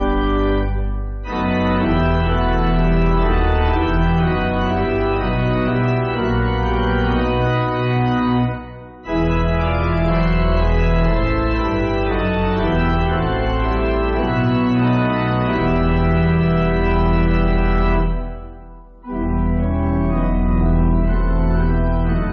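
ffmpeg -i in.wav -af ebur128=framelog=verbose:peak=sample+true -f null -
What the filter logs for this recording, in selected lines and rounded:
Integrated loudness:
  I:         -18.2 LUFS
  Threshold: -28.4 LUFS
Loudness range:
  LRA:         2.5 LU
  Threshold: -38.4 LUFS
  LRA low:   -19.7 LUFS
  LRA high:  -17.2 LUFS
Sample peak:
  Peak:       -7.7 dBFS
True peak:
  Peak:       -7.7 dBFS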